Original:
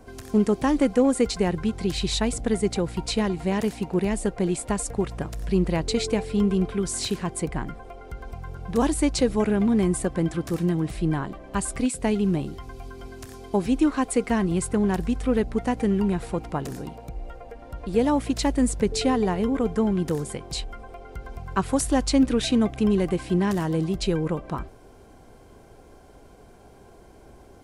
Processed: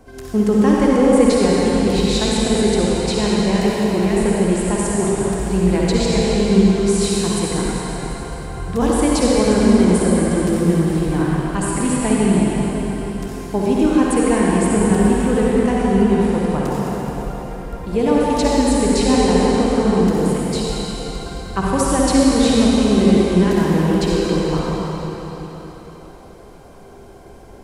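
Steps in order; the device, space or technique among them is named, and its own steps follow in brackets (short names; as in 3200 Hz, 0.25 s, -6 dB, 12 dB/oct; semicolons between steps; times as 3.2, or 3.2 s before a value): cathedral (reverb RT60 4.2 s, pre-delay 49 ms, DRR -6 dB); gain +1.5 dB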